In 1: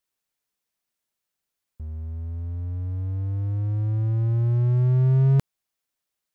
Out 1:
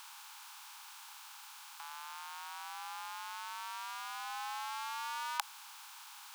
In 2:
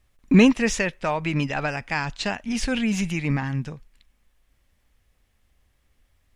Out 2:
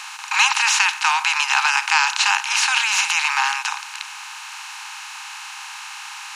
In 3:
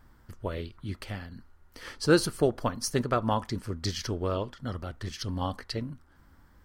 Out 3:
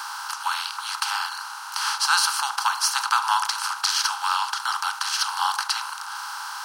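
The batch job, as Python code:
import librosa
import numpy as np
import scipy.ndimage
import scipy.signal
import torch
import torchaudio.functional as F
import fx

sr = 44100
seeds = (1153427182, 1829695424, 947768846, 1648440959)

y = fx.bin_compress(x, sr, power=0.4)
y = scipy.signal.sosfilt(scipy.signal.cheby1(8, 1.0, 810.0, 'highpass', fs=sr, output='sos'), y)
y = fx.peak_eq(y, sr, hz=1900.0, db=-9.0, octaves=0.27)
y = F.gain(torch.from_numpy(y), 7.5).numpy()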